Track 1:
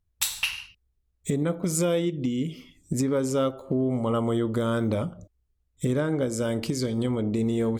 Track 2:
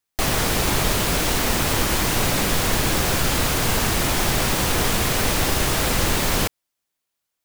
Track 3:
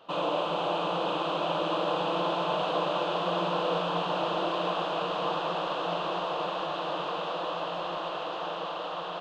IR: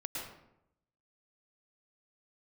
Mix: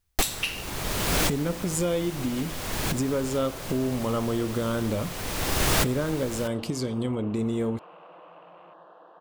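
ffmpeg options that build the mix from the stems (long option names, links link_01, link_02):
-filter_complex "[0:a]volume=-2dB,asplit=2[link_01][link_02];[1:a]volume=0.5dB[link_03];[2:a]dynaudnorm=framelen=650:gausssize=7:maxgain=6.5dB,afwtdn=0.02,acompressor=threshold=-28dB:ratio=2,adelay=750,volume=-19dB[link_04];[link_02]apad=whole_len=328194[link_05];[link_03][link_05]sidechaincompress=threshold=-43dB:ratio=8:attack=16:release=615[link_06];[link_01][link_06][link_04]amix=inputs=3:normalize=0"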